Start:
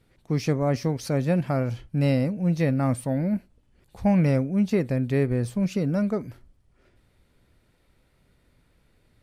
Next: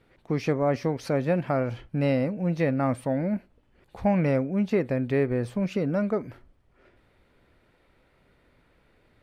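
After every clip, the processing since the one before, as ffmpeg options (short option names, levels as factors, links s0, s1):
-filter_complex "[0:a]bass=f=250:g=-8,treble=f=4000:g=-13,asplit=2[s0][s1];[s1]acompressor=threshold=0.02:ratio=6,volume=0.891[s2];[s0][s2]amix=inputs=2:normalize=0"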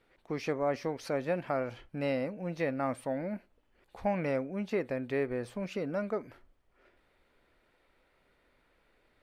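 -af "equalizer=f=110:w=0.51:g=-10.5,volume=0.631"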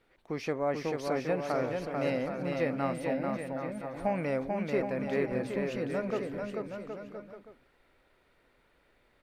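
-af "aecho=1:1:440|770|1018|1203|1342:0.631|0.398|0.251|0.158|0.1"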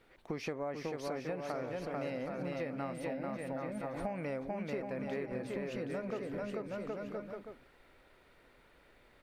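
-af "acompressor=threshold=0.01:ratio=6,volume=1.58"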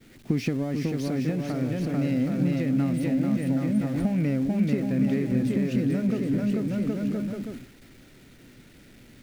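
-af "aeval=exprs='val(0)+0.5*0.00473*sgn(val(0))':c=same,agate=range=0.0224:threshold=0.00562:ratio=3:detection=peak,equalizer=f=125:t=o:w=1:g=10,equalizer=f=250:t=o:w=1:g=11,equalizer=f=500:t=o:w=1:g=-5,equalizer=f=1000:t=o:w=1:g=-10,volume=2.11"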